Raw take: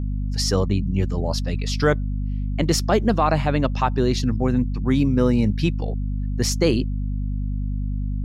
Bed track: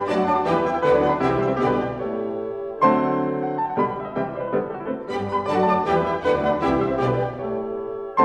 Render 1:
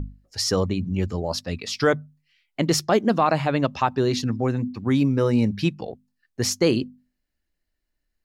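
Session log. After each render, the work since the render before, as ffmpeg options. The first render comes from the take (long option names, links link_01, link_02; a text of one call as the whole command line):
ffmpeg -i in.wav -af "bandreject=frequency=50:width_type=h:width=6,bandreject=frequency=100:width_type=h:width=6,bandreject=frequency=150:width_type=h:width=6,bandreject=frequency=200:width_type=h:width=6,bandreject=frequency=250:width_type=h:width=6" out.wav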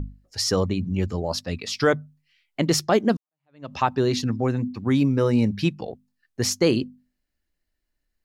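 ffmpeg -i in.wav -filter_complex "[0:a]asplit=2[link_01][link_02];[link_01]atrim=end=3.17,asetpts=PTS-STARTPTS,afade=type=out:start_time=3.166:duration=0.004:curve=hsin[link_03];[link_02]atrim=start=3.17,asetpts=PTS-STARTPTS,afade=type=in:duration=0.56:curve=exp[link_04];[link_03][link_04]concat=n=2:v=0:a=1" out.wav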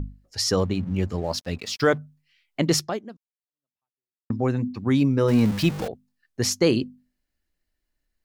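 ffmpeg -i in.wav -filter_complex "[0:a]asettb=1/sr,asplit=3[link_01][link_02][link_03];[link_01]atrim=end=0.594[link_04];[link_02]atrim=start=0.59:end=1.98,asetpts=PTS-STARTPTS,afade=type=in:duration=0.004:curve=qsin,afade=type=out:start_time=1.386:duration=0.004:curve=qsin,aeval=exprs='sgn(val(0))*max(abs(val(0))-0.00422,0)':channel_layout=same[link_05];[link_03]atrim=start=1.976[link_06];[link_04][link_05]acrossfade=duration=0.004:curve1=hsin:curve2=qsin[link_07];[link_07][link_06]acrossfade=duration=0.004:curve1=qsin:curve2=hsin,asettb=1/sr,asplit=3[link_08][link_09][link_10];[link_08]atrim=end=5.284[link_11];[link_09]atrim=start=5.28:end=5.88,asetpts=PTS-STARTPTS,afade=type=in:duration=0.004:curve=qsin,afade=type=out:start_time=0.596:duration=0.004:curve=qsin,aeval=exprs='val(0)+0.5*0.0398*sgn(val(0))':channel_layout=same[link_12];[link_10]atrim=start=5.876[link_13];[link_11][link_12]acrossfade=duration=0.004:curve1=hsin:curve2=qsin[link_14];[link_14][link_13]acrossfade=duration=0.004:curve1=qsin:curve2=hsin,asplit=2[link_15][link_16];[link_15]atrim=end=4.3,asetpts=PTS-STARTPTS,afade=type=out:start_time=2.79:duration=1.51:curve=exp[link_17];[link_16]atrim=start=4.3,asetpts=PTS-STARTPTS,afade=type=in:duration=0.004:curve=hsin[link_18];[link_17][link_18]concat=n=2:v=0:a=1" out.wav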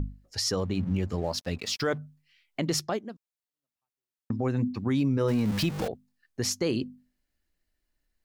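ffmpeg -i in.wav -af "alimiter=limit=-18dB:level=0:latency=1:release=133" out.wav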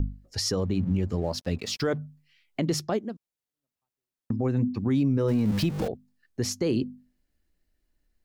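ffmpeg -i in.wav -filter_complex "[0:a]acrossover=split=570|1700[link_01][link_02][link_03];[link_01]acontrast=51[link_04];[link_04][link_02][link_03]amix=inputs=3:normalize=0,alimiter=limit=-16.5dB:level=0:latency=1:release=351" out.wav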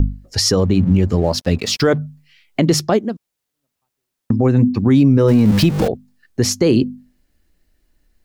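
ffmpeg -i in.wav -af "volume=12dB" out.wav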